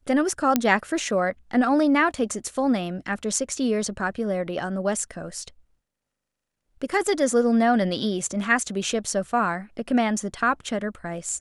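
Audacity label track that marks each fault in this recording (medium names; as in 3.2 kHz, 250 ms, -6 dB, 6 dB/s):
0.560000	0.560000	pop -5 dBFS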